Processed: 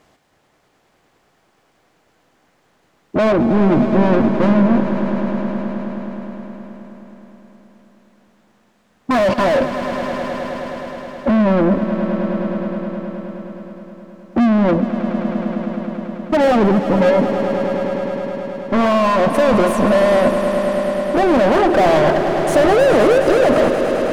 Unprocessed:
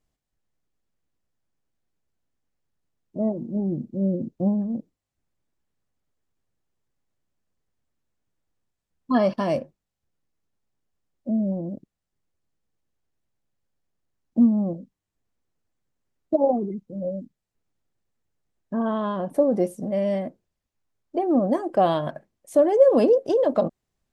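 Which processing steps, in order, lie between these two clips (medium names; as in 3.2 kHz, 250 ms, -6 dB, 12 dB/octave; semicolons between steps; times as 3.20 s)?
16.44–17.10 s: tilt EQ -3 dB/octave; overdrive pedal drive 41 dB, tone 1.3 kHz, clips at -6 dBFS; gain riding 2 s; echo with a slow build-up 105 ms, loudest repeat 5, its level -12.5 dB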